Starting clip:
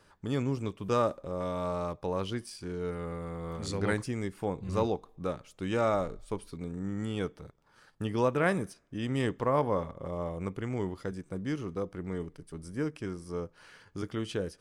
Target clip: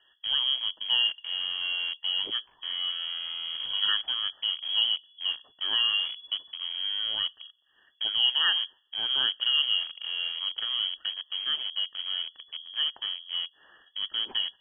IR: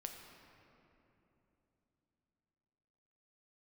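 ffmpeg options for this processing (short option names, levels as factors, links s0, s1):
-filter_complex "[0:a]afftfilt=real='re*(1-between(b*sr/4096,630,1500))':imag='im*(1-between(b*sr/4096,630,1500))':win_size=4096:overlap=0.75,asplit=2[s0][s1];[s1]acrusher=bits=5:mix=0:aa=0.000001,volume=0.447[s2];[s0][s2]amix=inputs=2:normalize=0,lowpass=f=2900:t=q:w=0.5098,lowpass=f=2900:t=q:w=0.6013,lowpass=f=2900:t=q:w=0.9,lowpass=f=2900:t=q:w=2.563,afreqshift=-3400"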